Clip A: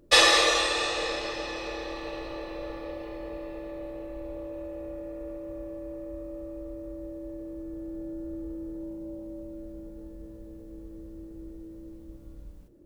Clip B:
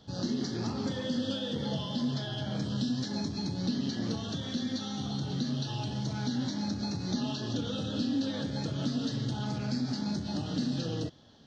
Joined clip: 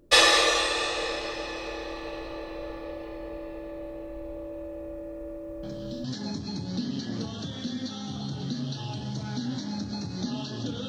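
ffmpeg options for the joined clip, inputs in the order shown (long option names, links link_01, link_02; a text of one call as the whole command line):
ffmpeg -i cue0.wav -i cue1.wav -filter_complex "[1:a]asplit=2[link_01][link_02];[0:a]apad=whole_dur=10.88,atrim=end=10.88,atrim=end=6.042[link_03];[link_02]atrim=start=2.938:end=7.78[link_04];[link_01]atrim=start=2.53:end=2.94,asetpts=PTS-STARTPTS,volume=-8dB,afade=type=in:duration=0.004:curve=hsin,afade=type=out:start_time=0.406:duration=0.004:curve=hsin,adelay=5630[link_05];[link_03][link_04]acrossfade=duration=0.004:curve1=hsin:curve2=hsin[link_06];[link_06][link_05]amix=inputs=2:normalize=0" out.wav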